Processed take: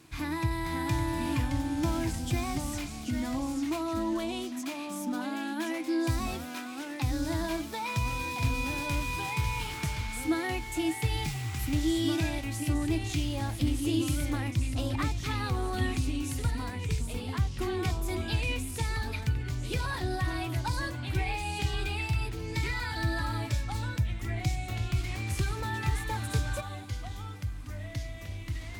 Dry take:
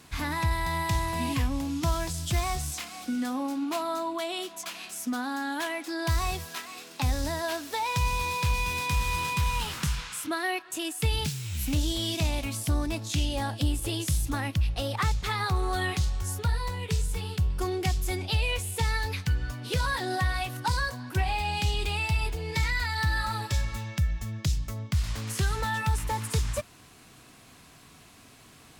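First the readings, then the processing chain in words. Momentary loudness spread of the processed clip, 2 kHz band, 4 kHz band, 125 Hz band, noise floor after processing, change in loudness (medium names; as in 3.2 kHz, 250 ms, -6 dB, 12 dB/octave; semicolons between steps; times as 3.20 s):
6 LU, -3.5 dB, -5.0 dB, -1.5 dB, -40 dBFS, -2.5 dB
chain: peaking EQ 120 Hz +9.5 dB 0.37 oct; small resonant body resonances 320/2400 Hz, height 14 dB, ringing for 90 ms; ever faster or slower copies 508 ms, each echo -2 st, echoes 2, each echo -6 dB; trim -6 dB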